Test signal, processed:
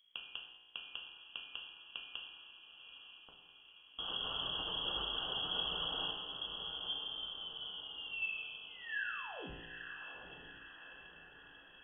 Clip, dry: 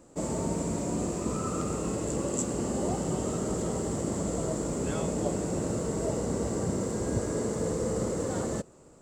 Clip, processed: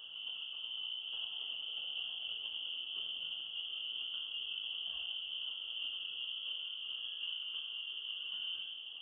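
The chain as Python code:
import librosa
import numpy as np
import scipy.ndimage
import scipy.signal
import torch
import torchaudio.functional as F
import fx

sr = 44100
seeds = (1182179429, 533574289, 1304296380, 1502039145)

y = fx.hum_notches(x, sr, base_hz=60, count=3)
y = fx.dereverb_blind(y, sr, rt60_s=0.72)
y = scipy.signal.sosfilt(scipy.signal.cheby1(3, 1.0, [530.0, 2000.0], 'bandstop', fs=sr, output='sos'), y)
y = fx.dynamic_eq(y, sr, hz=280.0, q=1.2, threshold_db=-44.0, ratio=4.0, max_db=5)
y = fx.over_compress(y, sr, threshold_db=-42.0, ratio=-1.0)
y = fx.dmg_noise_colour(y, sr, seeds[0], colour='brown', level_db=-67.0)
y = fx.comb_fb(y, sr, f0_hz=58.0, decay_s=1.6, harmonics='all', damping=0.0, mix_pct=80)
y = fx.echo_diffused(y, sr, ms=882, feedback_pct=56, wet_db=-8)
y = fx.rev_gated(y, sr, seeds[1], gate_ms=230, shape='falling', drr_db=1.0)
y = fx.freq_invert(y, sr, carrier_hz=3300)
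y = y * 10.0 ** (7.0 / 20.0)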